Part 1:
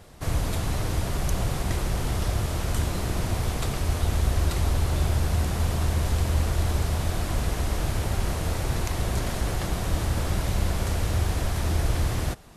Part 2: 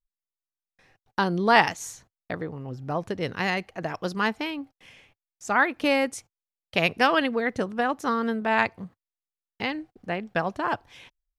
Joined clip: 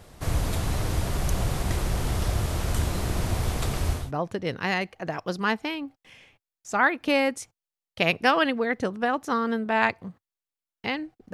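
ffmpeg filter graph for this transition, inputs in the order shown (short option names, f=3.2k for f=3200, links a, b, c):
-filter_complex "[0:a]apad=whole_dur=11.33,atrim=end=11.33,atrim=end=4.12,asetpts=PTS-STARTPTS[a];[1:a]atrim=start=2.64:end=10.09,asetpts=PTS-STARTPTS[b];[a][b]acrossfade=d=0.24:c1=tri:c2=tri"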